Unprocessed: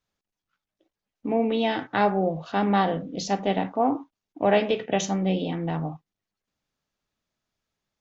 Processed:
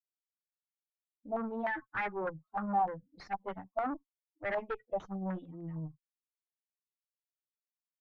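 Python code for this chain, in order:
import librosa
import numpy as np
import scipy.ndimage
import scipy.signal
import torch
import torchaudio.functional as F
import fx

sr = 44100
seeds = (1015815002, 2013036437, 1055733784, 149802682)

y = fx.bin_expand(x, sr, power=3.0)
y = fx.tube_stage(y, sr, drive_db=33.0, bias=0.55)
y = fx.filter_held_lowpass(y, sr, hz=6.6, low_hz=720.0, high_hz=2000.0)
y = y * 10.0 ** (-1.5 / 20.0)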